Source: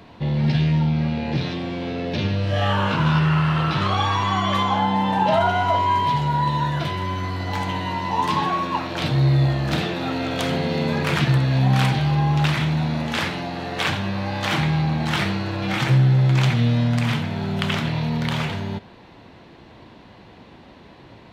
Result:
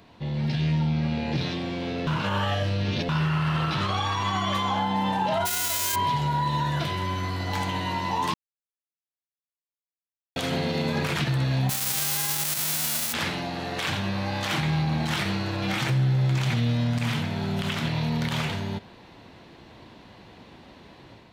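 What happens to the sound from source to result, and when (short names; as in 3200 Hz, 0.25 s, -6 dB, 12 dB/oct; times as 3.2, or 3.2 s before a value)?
2.07–3.09 reverse
5.45–5.94 spectral whitening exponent 0.1
8.34–10.36 mute
11.69–13.12 spectral whitening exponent 0.1
whole clip: high shelf 4500 Hz +7.5 dB; limiter -14 dBFS; AGC gain up to 5 dB; gain -8 dB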